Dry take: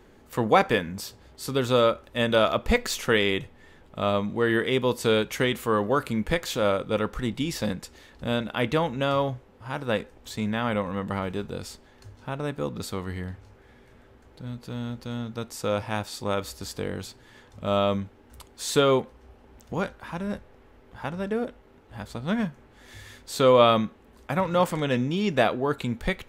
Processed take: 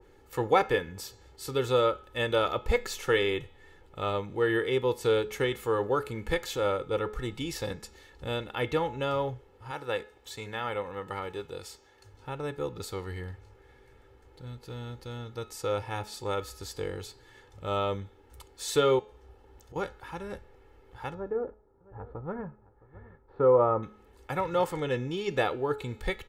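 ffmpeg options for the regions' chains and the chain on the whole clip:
-filter_complex "[0:a]asettb=1/sr,asplit=3[a][b][c];[a]atrim=end=9.714[d];[b]atrim=start=9.71:end=12.14,asetpts=PTS-STARTPTS,afade=t=in:d=0.004:c=qsin,afade=t=out:st=2.426:d=0.004:c=qsin,highpass=f=130:p=1,equalizer=f=190:w=0.54:g=-3.5[e];[c]atrim=start=12.136[f];[d][e]acrossfade=d=0.004:c1=hsin:c2=qsin[g];[g][f]acrossfade=d=0.004:c1=qsin:c2=hsin,asettb=1/sr,asplit=3[h][i][j];[h]atrim=end=18.994[k];[i]atrim=start=18.99:end=19.76,asetpts=PTS-STARTPTS,afade=t=in:d=0.004:c=qsin,afade=t=out:st=0.766:d=0.004:c=qsin,equalizer=f=2.3k:w=4.6:g=-4,acompressor=threshold=-42dB:ratio=3:attack=3.2:release=140:knee=1:detection=peak[l];[j]atrim=start=19.756[m];[k][l]acrossfade=d=0.004:c1=hsin:c2=qsin[n];[n][m]acrossfade=d=0.004:c1=qsin:c2=hsin,asettb=1/sr,asplit=3[o][p][q];[o]atrim=end=21.144[r];[p]atrim=start=21.14:end=23.83,asetpts=PTS-STARTPTS,afade=t=in:d=0.004:c=qsin,afade=t=out:st=2.686:d=0.004:c=qsin,agate=range=-7dB:threshold=-48dB:ratio=16:release=100:detection=peak,lowpass=f=1.3k:w=0.5412,lowpass=f=1.3k:w=1.3066,aecho=1:1:665:0.1,atrim=end_sample=118629[s];[q]atrim=start=23.826[t];[r][s]acrossfade=d=0.004:c1=hsin:c2=qsin[u];[u][t]acrossfade=d=0.004:c1=qsin:c2=hsin,aecho=1:1:2.3:0.66,bandreject=f=212.9:t=h:w=4,bandreject=f=425.8:t=h:w=4,bandreject=f=638.7:t=h:w=4,bandreject=f=851.6:t=h:w=4,bandreject=f=1.0645k:t=h:w=4,bandreject=f=1.2774k:t=h:w=4,bandreject=f=1.4903k:t=h:w=4,bandreject=f=1.7032k:t=h:w=4,bandreject=f=1.9161k:t=h:w=4,bandreject=f=2.129k:t=h:w=4,bandreject=f=2.3419k:t=h:w=4,bandreject=f=2.5548k:t=h:w=4,bandreject=f=2.7677k:t=h:w=4,bandreject=f=2.9806k:t=h:w=4,bandreject=f=3.1935k:t=h:w=4,bandreject=f=3.4064k:t=h:w=4,bandreject=f=3.6193k:t=h:w=4,bandreject=f=3.8322k:t=h:w=4,bandreject=f=4.0451k:t=h:w=4,bandreject=f=4.258k:t=h:w=4,bandreject=f=4.4709k:t=h:w=4,bandreject=f=4.6838k:t=h:w=4,bandreject=f=4.8967k:t=h:w=4,bandreject=f=5.1096k:t=h:w=4,bandreject=f=5.3225k:t=h:w=4,bandreject=f=5.5354k:t=h:w=4,bandreject=f=5.7483k:t=h:w=4,bandreject=f=5.9612k:t=h:w=4,bandreject=f=6.1741k:t=h:w=4,bandreject=f=6.387k:t=h:w=4,bandreject=f=6.5999k:t=h:w=4,bandreject=f=6.8128k:t=h:w=4,bandreject=f=7.0257k:t=h:w=4,bandreject=f=7.2386k:t=h:w=4,bandreject=f=7.4515k:t=h:w=4,bandreject=f=7.6644k:t=h:w=4,bandreject=f=7.8773k:t=h:w=4,adynamicequalizer=threshold=0.02:dfrequency=1600:dqfactor=0.7:tfrequency=1600:tqfactor=0.7:attack=5:release=100:ratio=0.375:range=2.5:mode=cutabove:tftype=highshelf,volume=-5.5dB"

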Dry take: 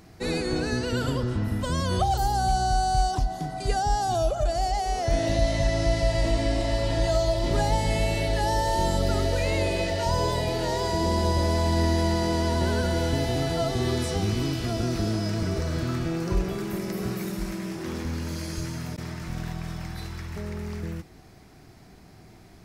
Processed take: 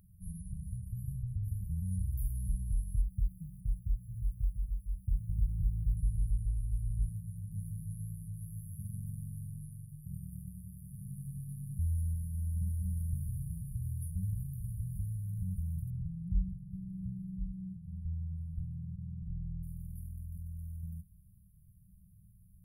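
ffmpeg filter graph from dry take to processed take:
-filter_complex "[0:a]asettb=1/sr,asplit=3[a][b][c];[a]atrim=end=3.014[d];[b]atrim=start=3.01:end=5.97,asetpts=PTS-STARTPTS,afade=t=in:d=0.004:c=qsin,afade=t=out:st=2.956:d=0.004:c=qsin,acrusher=bits=6:mode=log:mix=0:aa=0.000001,acrossover=split=4600[e][f];[f]acompressor=threshold=-55dB:ratio=4:attack=1:release=60[g];[e][g]amix=inputs=2:normalize=0[h];[c]atrim=start=5.966[i];[d][h]acrossfade=d=0.004:c1=hsin:c2=qsin[j];[j][i]acrossfade=d=0.004:c1=qsin:c2=hsin,asettb=1/sr,asplit=3[k][l][m];[k]atrim=end=7.094[n];[l]atrim=start=7.09:end=11.79,asetpts=PTS-STARTPTS,afade=t=in:d=0.004:c=qsin,afade=t=out:st=4.696:d=0.004:c=qsin,aeval=exprs='val(0)*sin(2*PI*57*n/s)':c=same,highpass=75[o];[m]atrim=start=11.786[p];[n][o]acrossfade=d=0.004:c1=hsin:c2=qsin[q];[q][p]acrossfade=d=0.004:c1=qsin:c2=hsin,asettb=1/sr,asplit=3[r][s][t];[r]atrim=end=15.904[u];[s]atrim=start=15.9:end=19.63,asetpts=PTS-STARTPTS,afade=t=in:d=0.004:c=qsin,afade=t=out:st=3.726:d=0.004:c=qsin,aeval=exprs='val(0)+0.5*0.0178*sgn(val(0))':c=same,adynamicsmooth=sensitivity=3:basefreq=500[v];[t]atrim=start=19.626[w];[u][v]acrossfade=d=0.004:c1=hsin:c2=qsin[x];[x][w]acrossfade=d=0.004:c1=qsin:c2=hsin,afftfilt=real='re*(1-between(b*sr/4096,200,9400))':imag='im*(1-between(b*sr/4096,200,9400))':win_size=4096:overlap=0.75,equalizer=f=150:t=o:w=0.76:g=-6.5,volume=-5dB"

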